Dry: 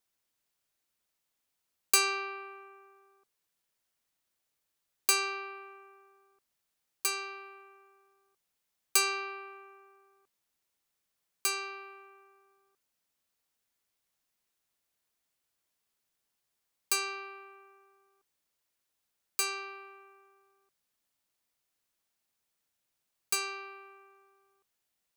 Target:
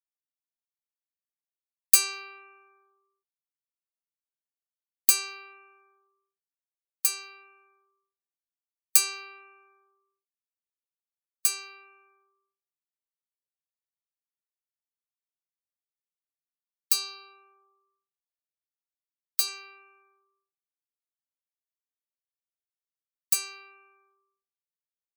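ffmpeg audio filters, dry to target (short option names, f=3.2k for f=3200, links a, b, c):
-filter_complex "[0:a]asettb=1/sr,asplit=3[a][b][c];[a]atrim=end=16.924[d];[b]atrim=start=16.92:end=19.48,asetpts=PTS-STARTPTS,afade=t=in:d=0.004:c=qsin,afade=t=out:st=2.556:d=0.004:c=qsin,equalizer=f=125:t=o:w=1:g=7,equalizer=f=250:t=o:w=1:g=12,equalizer=f=500:t=o:w=1:g=-9,equalizer=f=1k:t=o:w=1:g=5,equalizer=f=2k:t=o:w=1:g=-11,equalizer=f=4k:t=o:w=1:g=9,equalizer=f=8k:t=o:w=1:g=-6[e];[c]atrim=start=19.476[f];[d][e]acrossfade=d=0.004:c1=hsin:c2=qsin[g];[g][f]acrossfade=d=0.004:c1=qsin:c2=hsin,afftdn=nr=29:nf=-51,crystalizer=i=6:c=0,volume=-11dB"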